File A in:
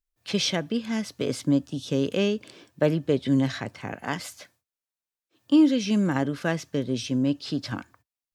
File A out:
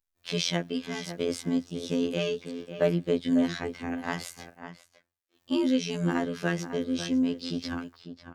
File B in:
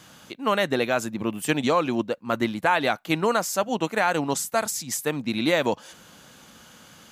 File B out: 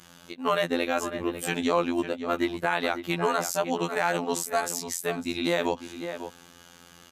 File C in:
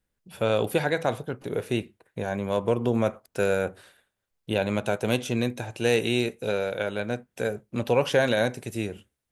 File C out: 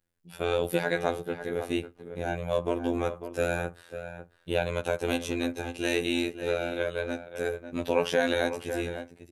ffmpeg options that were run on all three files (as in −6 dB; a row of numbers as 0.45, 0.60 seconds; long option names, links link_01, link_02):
-filter_complex "[0:a]afftfilt=real='hypot(re,im)*cos(PI*b)':imag='0':win_size=2048:overlap=0.75,asplit=2[link_01][link_02];[link_02]adelay=548.1,volume=-10dB,highshelf=frequency=4000:gain=-12.3[link_03];[link_01][link_03]amix=inputs=2:normalize=0,alimiter=level_in=9dB:limit=-1dB:release=50:level=0:latency=1,volume=-8dB"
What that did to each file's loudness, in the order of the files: −3.5, −3.0, −3.0 LU